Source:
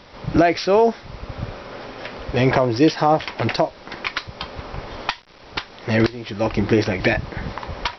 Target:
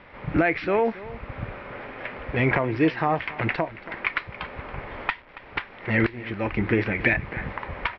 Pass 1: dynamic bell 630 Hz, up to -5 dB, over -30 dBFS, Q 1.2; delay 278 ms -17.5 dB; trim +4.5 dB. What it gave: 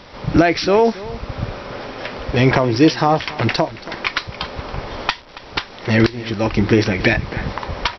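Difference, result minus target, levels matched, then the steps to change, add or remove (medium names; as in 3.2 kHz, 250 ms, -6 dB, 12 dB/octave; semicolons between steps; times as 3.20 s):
2 kHz band -4.0 dB
add after dynamic bell: four-pole ladder low-pass 2.6 kHz, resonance 45%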